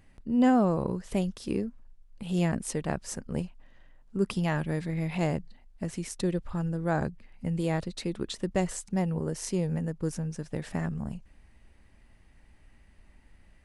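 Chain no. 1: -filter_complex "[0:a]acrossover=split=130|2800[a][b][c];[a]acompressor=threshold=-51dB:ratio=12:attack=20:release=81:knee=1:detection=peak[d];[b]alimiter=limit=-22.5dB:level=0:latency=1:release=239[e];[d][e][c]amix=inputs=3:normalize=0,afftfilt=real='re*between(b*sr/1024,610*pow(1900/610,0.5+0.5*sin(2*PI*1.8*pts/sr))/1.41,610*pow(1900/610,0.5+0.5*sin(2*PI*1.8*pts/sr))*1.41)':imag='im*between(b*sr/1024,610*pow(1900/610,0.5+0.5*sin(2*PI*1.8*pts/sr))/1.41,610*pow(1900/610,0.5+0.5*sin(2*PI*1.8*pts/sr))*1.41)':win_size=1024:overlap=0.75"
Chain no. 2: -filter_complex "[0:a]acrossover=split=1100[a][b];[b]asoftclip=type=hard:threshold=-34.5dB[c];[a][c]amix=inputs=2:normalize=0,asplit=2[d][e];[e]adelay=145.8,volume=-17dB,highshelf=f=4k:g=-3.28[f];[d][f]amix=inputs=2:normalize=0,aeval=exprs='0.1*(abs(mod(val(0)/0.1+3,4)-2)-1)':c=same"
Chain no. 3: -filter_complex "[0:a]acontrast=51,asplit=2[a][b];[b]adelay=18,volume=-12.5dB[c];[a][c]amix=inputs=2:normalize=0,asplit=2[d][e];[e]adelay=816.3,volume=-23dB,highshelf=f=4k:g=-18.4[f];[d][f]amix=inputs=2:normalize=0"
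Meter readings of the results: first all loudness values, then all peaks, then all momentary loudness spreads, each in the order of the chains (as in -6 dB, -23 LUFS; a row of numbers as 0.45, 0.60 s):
-47.5, -32.0, -24.5 LUFS; -28.0, -20.0, -7.0 dBFS; 19, 8, 9 LU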